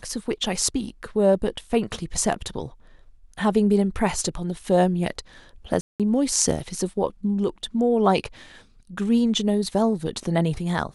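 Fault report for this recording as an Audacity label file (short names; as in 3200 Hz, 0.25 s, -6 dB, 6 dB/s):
5.810000	6.000000	gap 0.187 s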